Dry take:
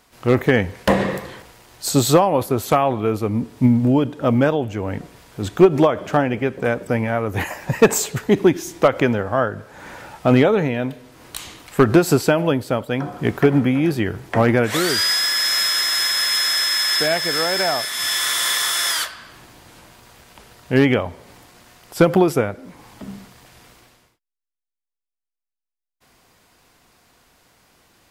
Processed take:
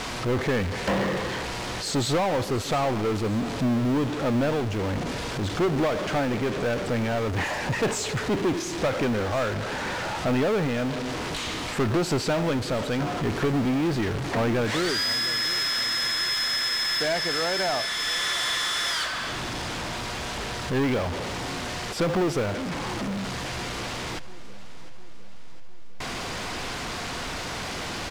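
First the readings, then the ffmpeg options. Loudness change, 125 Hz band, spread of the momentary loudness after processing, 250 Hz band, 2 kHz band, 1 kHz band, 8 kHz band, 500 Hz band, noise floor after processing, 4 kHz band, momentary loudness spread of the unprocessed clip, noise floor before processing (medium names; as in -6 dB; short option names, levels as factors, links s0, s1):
-8.0 dB, -6.0 dB, 8 LU, -7.0 dB, -4.5 dB, -5.0 dB, -8.0 dB, -7.5 dB, -33 dBFS, -5.0 dB, 13 LU, -85 dBFS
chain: -af "aeval=exprs='val(0)+0.5*0.119*sgn(val(0))':c=same,lowpass=5600,asoftclip=type=tanh:threshold=0.224,acrusher=bits=8:mode=log:mix=0:aa=0.000001,aecho=1:1:705|1410|2115|2820|3525:0.133|0.072|0.0389|0.021|0.0113,volume=0.473"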